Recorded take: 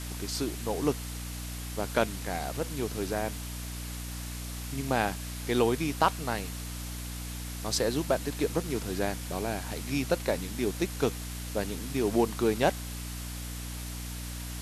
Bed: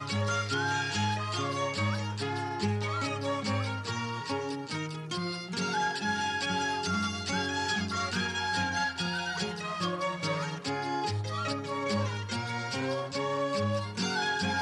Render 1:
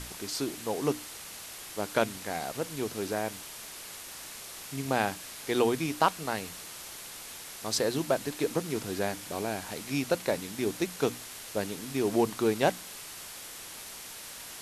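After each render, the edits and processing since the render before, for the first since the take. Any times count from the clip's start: notches 60/120/180/240/300 Hz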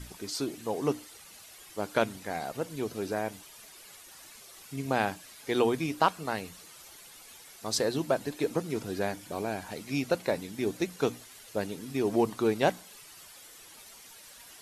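denoiser 11 dB, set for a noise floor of -44 dBFS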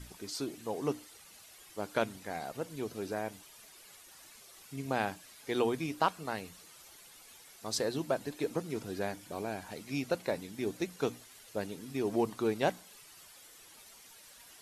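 gain -4.5 dB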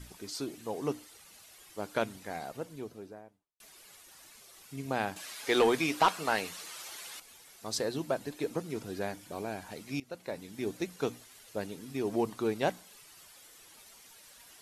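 2.33–3.6 studio fade out; 5.16–7.2 overdrive pedal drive 18 dB, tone 6900 Hz, clips at -13.5 dBFS; 10–10.61 fade in, from -18.5 dB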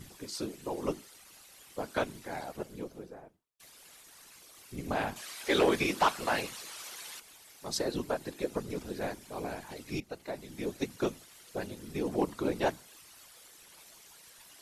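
whisperiser; overloaded stage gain 18 dB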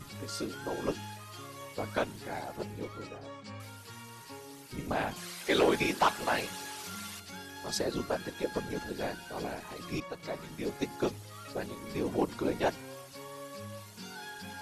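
add bed -14.5 dB

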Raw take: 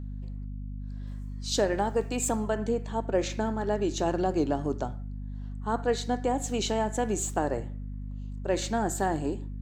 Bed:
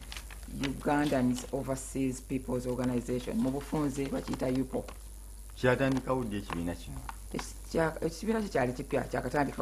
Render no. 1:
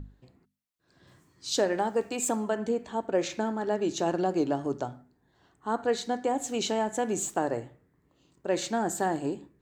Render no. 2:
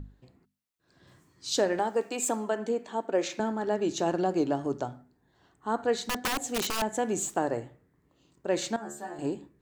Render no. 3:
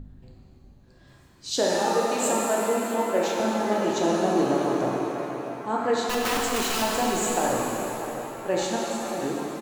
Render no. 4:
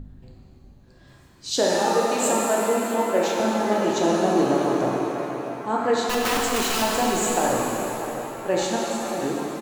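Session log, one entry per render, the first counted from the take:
notches 50/100/150/200/250 Hz
1.79–3.4 HPF 230 Hz; 5.93–6.82 wrapped overs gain 23 dB; 8.76–9.19 metallic resonator 70 Hz, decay 0.53 s, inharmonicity 0.002
outdoor echo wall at 110 m, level -10 dB; shimmer reverb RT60 2.8 s, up +7 st, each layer -8 dB, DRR -3 dB
gain +2.5 dB

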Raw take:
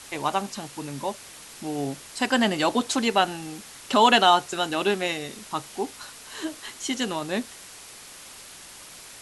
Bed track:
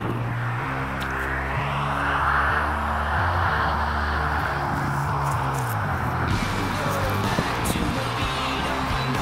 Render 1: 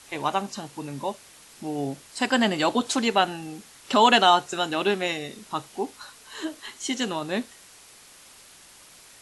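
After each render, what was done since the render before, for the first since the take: noise print and reduce 6 dB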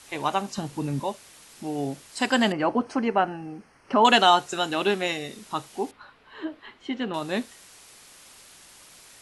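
0.58–1 low shelf 330 Hz +10.5 dB; 2.52–4.05 running mean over 12 samples; 5.91–7.14 air absorption 420 m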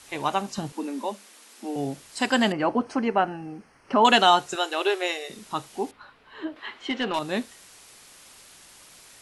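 0.72–1.76 Chebyshev high-pass 200 Hz, order 10; 4.55–5.3 brick-wall FIR high-pass 320 Hz; 6.56–7.19 overdrive pedal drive 14 dB, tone 6500 Hz, clips at -15.5 dBFS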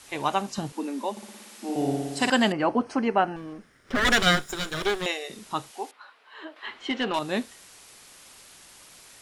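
1.11–2.3 flutter echo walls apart 10 m, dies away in 1.3 s; 3.36–5.06 minimum comb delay 0.57 ms; 5.71–6.63 HPF 590 Hz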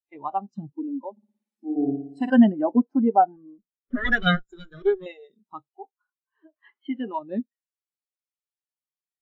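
in parallel at -2.5 dB: compressor, threshold -31 dBFS, peak gain reduction 14.5 dB; on the sum: spectral expander 2.5:1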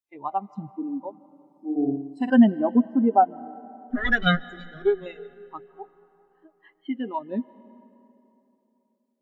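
digital reverb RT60 3.3 s, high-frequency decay 0.6×, pre-delay 0.11 s, DRR 19.5 dB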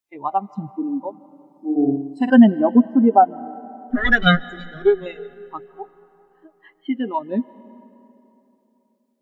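gain +6 dB; limiter -2 dBFS, peak gain reduction 2 dB

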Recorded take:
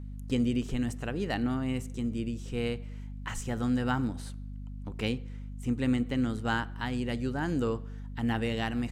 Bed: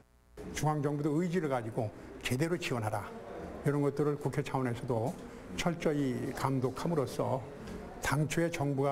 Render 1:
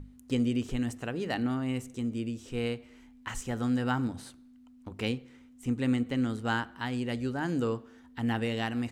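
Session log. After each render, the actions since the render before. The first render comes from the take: notches 50/100/150/200 Hz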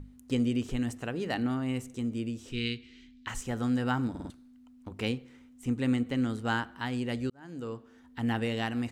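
2.52–3.27 EQ curve 410 Hz 0 dB, 580 Hz -27 dB, 880 Hz -21 dB, 1800 Hz 0 dB, 3900 Hz +11 dB, 11000 Hz -12 dB; 4.1 stutter in place 0.05 s, 4 plays; 7.3–8.21 fade in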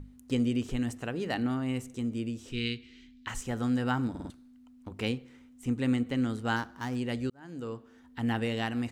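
6.56–6.96 median filter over 15 samples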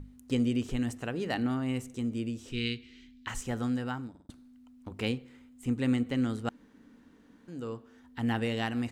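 3.53–4.29 fade out; 5.02–5.77 notch 5800 Hz, Q 8.7; 6.49–7.48 room tone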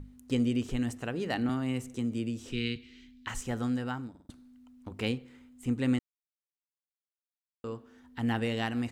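1.49–2.76 three-band squash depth 40%; 5.99–7.64 mute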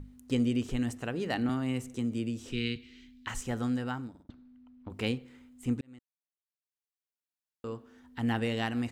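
4.23–4.9 air absorption 270 m; 5.81–7.74 fade in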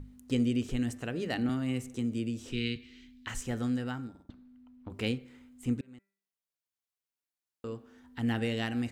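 de-hum 197.1 Hz, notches 13; dynamic EQ 960 Hz, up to -6 dB, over -52 dBFS, Q 1.7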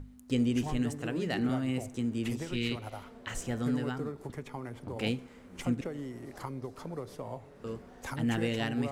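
add bed -8 dB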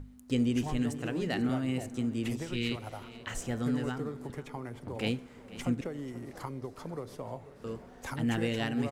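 echo 0.487 s -17.5 dB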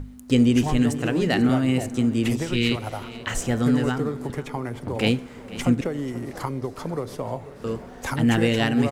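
gain +10.5 dB

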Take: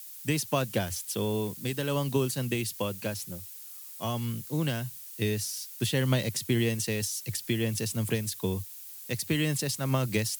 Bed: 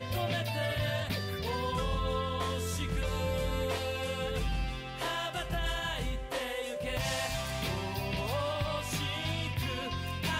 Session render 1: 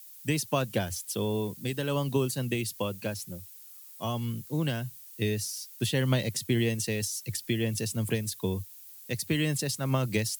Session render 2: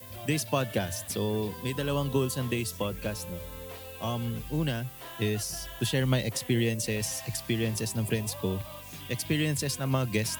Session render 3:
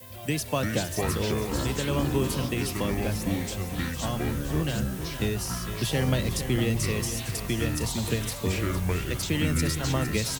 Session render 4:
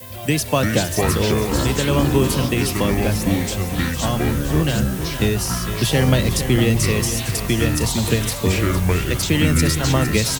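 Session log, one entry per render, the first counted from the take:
denoiser 6 dB, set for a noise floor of -45 dBFS
add bed -10.5 dB
echoes that change speed 0.229 s, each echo -6 st, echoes 3; echo 0.458 s -10.5 dB
gain +9 dB

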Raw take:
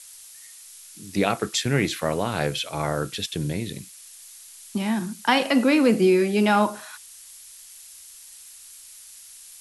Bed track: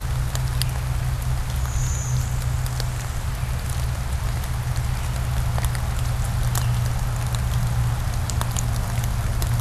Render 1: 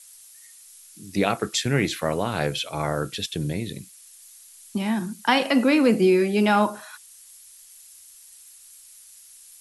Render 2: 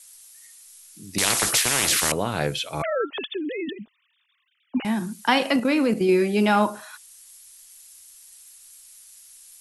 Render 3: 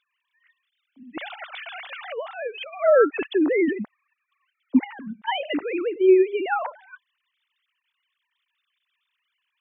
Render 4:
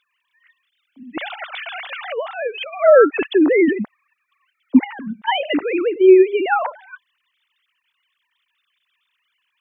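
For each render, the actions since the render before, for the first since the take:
denoiser 6 dB, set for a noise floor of -46 dBFS
1.18–2.12 spectral compressor 10:1; 2.82–4.85 sine-wave speech; 5.56–6.09 level quantiser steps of 10 dB
sine-wave speech
gain +6.5 dB; limiter -2 dBFS, peak gain reduction 1.5 dB

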